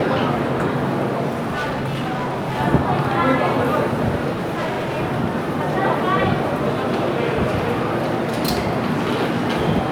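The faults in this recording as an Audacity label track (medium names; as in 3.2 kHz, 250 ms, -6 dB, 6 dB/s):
1.460000	2.610000	clipped -20 dBFS
4.330000	4.980000	clipped -20 dBFS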